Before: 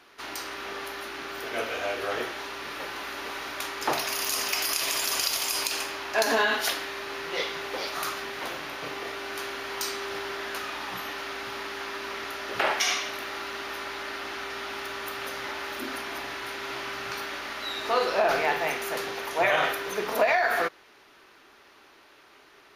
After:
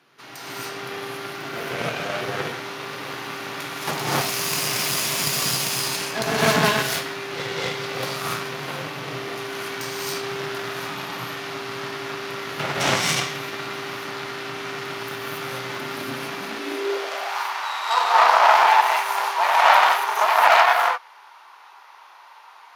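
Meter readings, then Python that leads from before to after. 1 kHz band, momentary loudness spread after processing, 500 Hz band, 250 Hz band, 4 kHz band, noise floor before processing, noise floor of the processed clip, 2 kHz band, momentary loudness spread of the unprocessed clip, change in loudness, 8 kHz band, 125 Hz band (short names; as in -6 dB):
+11.0 dB, 16 LU, +3.5 dB, +7.5 dB, +4.5 dB, -56 dBFS, -47 dBFS, +5.0 dB, 11 LU, +6.5 dB, +4.5 dB, +17.5 dB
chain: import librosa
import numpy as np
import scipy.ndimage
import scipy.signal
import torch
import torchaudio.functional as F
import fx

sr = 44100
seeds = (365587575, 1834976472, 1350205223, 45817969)

y = fx.rev_gated(x, sr, seeds[0], gate_ms=310, shape='rising', drr_db=-7.5)
y = fx.cheby_harmonics(y, sr, harmonics=(4,), levels_db=(-7,), full_scale_db=-3.0)
y = fx.filter_sweep_highpass(y, sr, from_hz=140.0, to_hz=910.0, start_s=16.26, end_s=17.41, q=5.3)
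y = y * 10.0 ** (-5.5 / 20.0)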